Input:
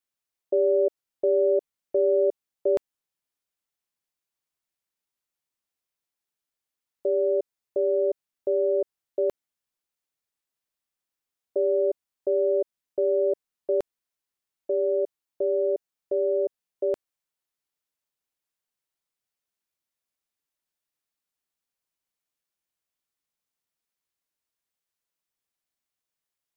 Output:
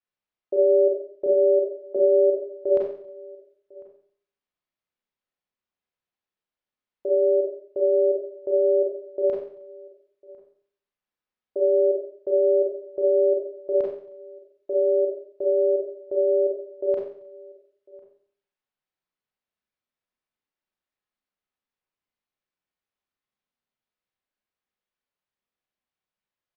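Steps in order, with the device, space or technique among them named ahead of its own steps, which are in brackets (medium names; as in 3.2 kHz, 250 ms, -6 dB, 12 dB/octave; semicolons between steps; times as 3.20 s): 1.26–1.96 s: high-pass 290 Hz 12 dB/octave; shout across a valley (distance through air 230 m; echo from a far wall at 180 m, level -23 dB); Schroeder reverb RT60 0.56 s, combs from 30 ms, DRR -2.5 dB; trim -2 dB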